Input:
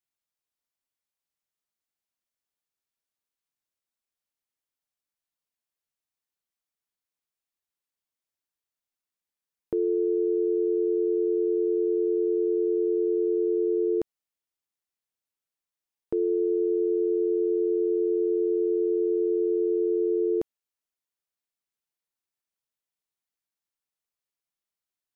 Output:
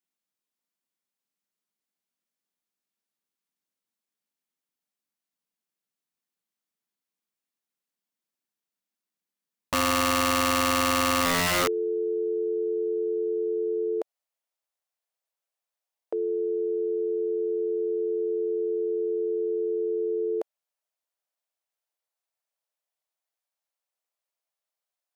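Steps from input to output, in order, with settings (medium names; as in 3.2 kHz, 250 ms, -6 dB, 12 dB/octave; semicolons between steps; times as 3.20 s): high-pass sweep 200 Hz -> 610 Hz, 11.21–11.72 s; integer overflow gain 19 dB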